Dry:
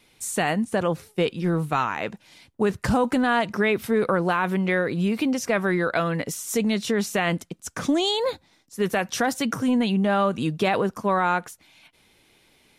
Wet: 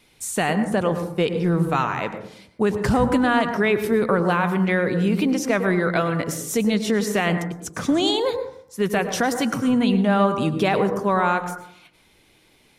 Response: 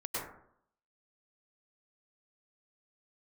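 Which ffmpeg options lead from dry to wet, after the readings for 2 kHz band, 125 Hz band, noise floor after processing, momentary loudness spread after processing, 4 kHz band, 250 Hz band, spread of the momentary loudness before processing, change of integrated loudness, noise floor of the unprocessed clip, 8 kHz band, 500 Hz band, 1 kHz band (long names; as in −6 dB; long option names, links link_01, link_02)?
+1.5 dB, +4.0 dB, −58 dBFS, 7 LU, +1.5 dB, +3.0 dB, 6 LU, +2.5 dB, −61 dBFS, +1.5 dB, +2.5 dB, +2.0 dB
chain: -filter_complex "[0:a]asplit=2[link_01][link_02];[1:a]atrim=start_sample=2205,lowshelf=frequency=350:gain=9[link_03];[link_02][link_03]afir=irnorm=-1:irlink=0,volume=-12.5dB[link_04];[link_01][link_04]amix=inputs=2:normalize=0"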